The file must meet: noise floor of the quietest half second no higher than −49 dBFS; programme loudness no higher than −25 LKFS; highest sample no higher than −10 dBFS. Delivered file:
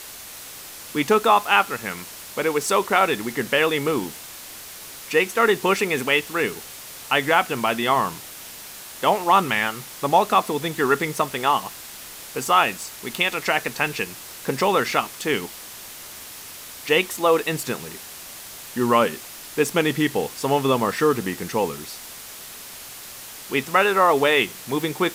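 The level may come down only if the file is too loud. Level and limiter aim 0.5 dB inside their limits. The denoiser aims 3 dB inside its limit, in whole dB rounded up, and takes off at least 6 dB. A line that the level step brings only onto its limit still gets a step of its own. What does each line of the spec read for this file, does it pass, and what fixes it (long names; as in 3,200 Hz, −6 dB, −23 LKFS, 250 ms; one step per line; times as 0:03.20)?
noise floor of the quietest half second −39 dBFS: out of spec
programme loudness −21.5 LKFS: out of spec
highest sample −3.0 dBFS: out of spec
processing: broadband denoise 9 dB, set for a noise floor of −39 dBFS
level −4 dB
brickwall limiter −10.5 dBFS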